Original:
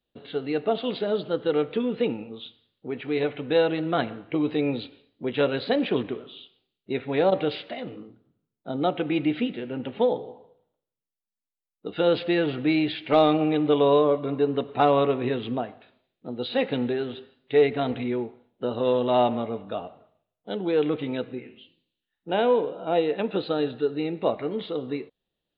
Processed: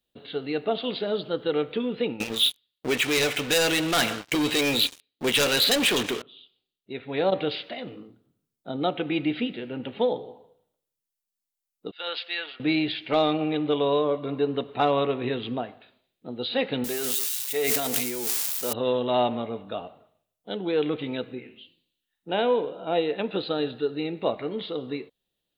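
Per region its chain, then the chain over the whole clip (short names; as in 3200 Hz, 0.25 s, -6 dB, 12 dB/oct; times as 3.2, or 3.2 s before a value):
2.2–6.22 tilt shelf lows -7 dB + sample leveller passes 5
11.91–12.6 HPF 1200 Hz + three-band expander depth 100%
16.84–18.73 switching spikes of -24 dBFS + low shelf 250 Hz -11.5 dB + sustainer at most 22 dB/s
whole clip: high shelf 3700 Hz +11 dB; vocal rider within 4 dB 0.5 s; gain -6 dB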